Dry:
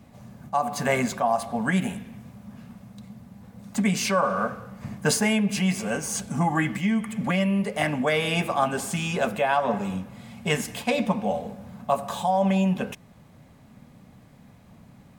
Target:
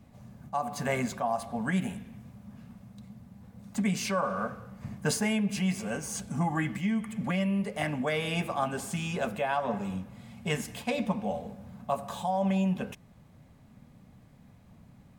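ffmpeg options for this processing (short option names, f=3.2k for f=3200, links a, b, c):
-af "lowshelf=f=130:g=7,volume=-7dB"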